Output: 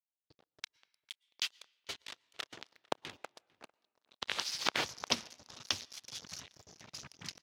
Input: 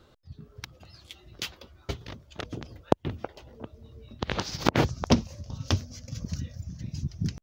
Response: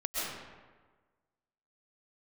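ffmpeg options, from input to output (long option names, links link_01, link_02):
-filter_complex "[0:a]asettb=1/sr,asplit=3[link_01][link_02][link_03];[link_01]atrim=end=5.804[link_04];[link_02]atrim=start=5.8:end=6.24,asetpts=PTS-STARTPTS,afade=type=in:duration=0.004:curve=qsin,afade=type=out:start_time=0.436:duration=0.004:curve=qsin,equalizer=frequency=3500:width=3.2:gain=9[link_05];[link_03]atrim=start=6.236[link_06];[link_04][link_05]acrossfade=duration=0.004:curve1=hsin:curve2=qsin[link_07];[link_07][link_06]acrossfade=duration=0.004:curve1=qsin:curve2=hsin,acrusher=bits=5:mix=0:aa=0.5,bandpass=frequency=4000:width_type=q:width=0.66:csg=0,asplit=2[link_08][link_09];[link_09]adelay=449,volume=-25dB,highshelf=frequency=4000:gain=-10.1[link_10];[link_08][link_10]amix=inputs=2:normalize=0,asplit=2[link_11][link_12];[1:a]atrim=start_sample=2205,asetrate=66150,aresample=44100,adelay=30[link_13];[link_12][link_13]afir=irnorm=-1:irlink=0,volume=-29.5dB[link_14];[link_11][link_14]amix=inputs=2:normalize=0"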